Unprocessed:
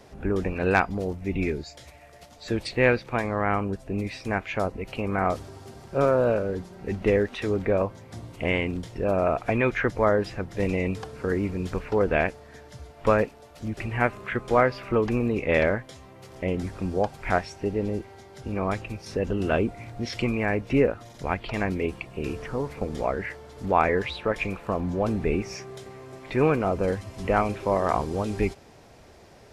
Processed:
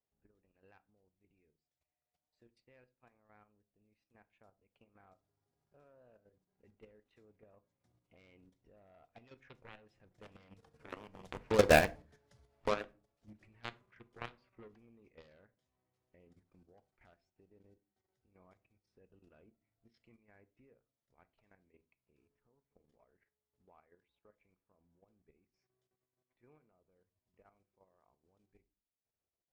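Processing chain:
source passing by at 0:11.84, 12 m/s, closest 2.7 metres
harmonic generator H 5 −27 dB, 7 −13 dB, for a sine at −19 dBFS
transient designer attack +3 dB, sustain −6 dB
output level in coarse steps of 11 dB
on a send: convolution reverb RT60 0.35 s, pre-delay 4 ms, DRR 14 dB
on the sum: level +2 dB

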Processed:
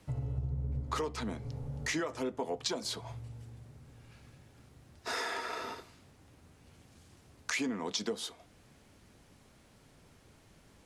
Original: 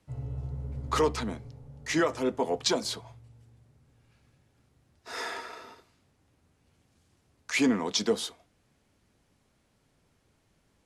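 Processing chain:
0:00.38–0:00.84: low-shelf EQ 460 Hz +8.5 dB
downward compressor 6 to 1, threshold −42 dBFS, peak gain reduction 20 dB
level +8.5 dB

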